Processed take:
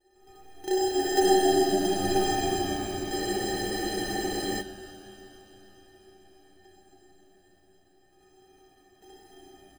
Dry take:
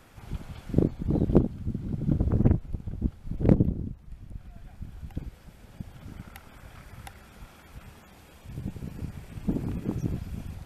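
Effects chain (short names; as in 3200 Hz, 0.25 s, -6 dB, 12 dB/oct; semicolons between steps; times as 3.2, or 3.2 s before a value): tape stop at the end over 1.09 s; Doppler pass-by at 2.21, 24 m/s, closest 24 m; band shelf 670 Hz +16 dB 2.8 oct; sample-and-hold 41×; metallic resonator 340 Hz, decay 0.38 s, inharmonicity 0.03; frequency-shifting echo 0.294 s, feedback 48%, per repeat -82 Hz, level -9.5 dB; reverb RT60 4.7 s, pre-delay 37 ms, DRR -8.5 dB; speed mistake 44.1 kHz file played as 48 kHz; spectral freeze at 3.13, 1.47 s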